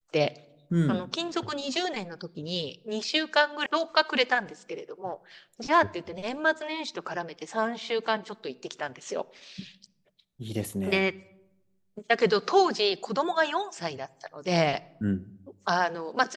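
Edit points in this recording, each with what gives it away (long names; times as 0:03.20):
0:03.66: cut off before it has died away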